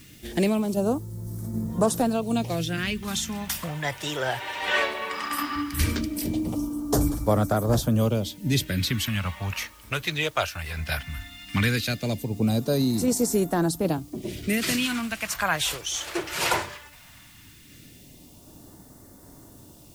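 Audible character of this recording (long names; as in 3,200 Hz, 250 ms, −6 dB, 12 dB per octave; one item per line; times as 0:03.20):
tremolo saw down 1.3 Hz, depth 30%
a quantiser's noise floor 10 bits, dither triangular
phaser sweep stages 2, 0.17 Hz, lowest notch 210–2,500 Hz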